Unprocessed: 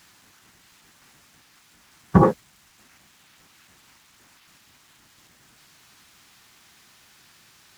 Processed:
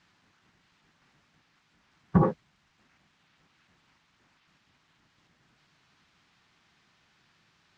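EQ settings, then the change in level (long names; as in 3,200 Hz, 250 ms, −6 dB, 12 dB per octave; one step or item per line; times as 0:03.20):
high-frequency loss of the air 150 metres
parametric band 160 Hz +4.5 dB 0.51 octaves
−8.5 dB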